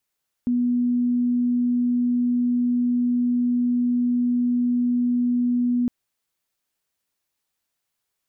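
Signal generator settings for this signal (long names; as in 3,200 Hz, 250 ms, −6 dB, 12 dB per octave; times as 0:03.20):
tone sine 244 Hz −18 dBFS 5.41 s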